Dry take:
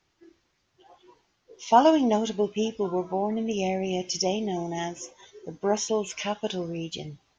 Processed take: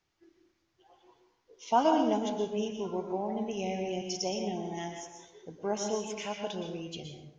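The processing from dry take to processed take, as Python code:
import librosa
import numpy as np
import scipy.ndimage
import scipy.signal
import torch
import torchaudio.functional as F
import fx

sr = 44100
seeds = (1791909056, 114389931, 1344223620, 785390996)

y = fx.rev_plate(x, sr, seeds[0], rt60_s=0.75, hf_ratio=0.65, predelay_ms=105, drr_db=4.0)
y = y * 10.0 ** (-7.5 / 20.0)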